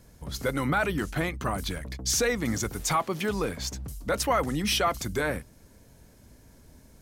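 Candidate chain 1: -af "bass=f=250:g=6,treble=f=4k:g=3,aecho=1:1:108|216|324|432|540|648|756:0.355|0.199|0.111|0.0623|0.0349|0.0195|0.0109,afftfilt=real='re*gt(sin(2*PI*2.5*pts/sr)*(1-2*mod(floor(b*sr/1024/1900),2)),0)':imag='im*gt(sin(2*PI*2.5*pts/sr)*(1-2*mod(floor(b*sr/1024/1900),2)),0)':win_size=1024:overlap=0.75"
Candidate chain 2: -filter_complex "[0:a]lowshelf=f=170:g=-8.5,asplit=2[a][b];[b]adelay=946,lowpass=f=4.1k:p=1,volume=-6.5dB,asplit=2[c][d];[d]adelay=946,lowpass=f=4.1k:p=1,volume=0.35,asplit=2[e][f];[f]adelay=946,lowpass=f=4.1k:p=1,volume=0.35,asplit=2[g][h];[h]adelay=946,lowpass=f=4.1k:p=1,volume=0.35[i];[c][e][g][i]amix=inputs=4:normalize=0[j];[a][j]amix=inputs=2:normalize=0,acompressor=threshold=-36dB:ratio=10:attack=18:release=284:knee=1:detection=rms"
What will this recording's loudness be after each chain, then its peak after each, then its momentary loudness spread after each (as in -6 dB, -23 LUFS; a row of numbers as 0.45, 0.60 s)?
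-28.5, -40.0 LUFS; -13.0, -24.5 dBFS; 8, 4 LU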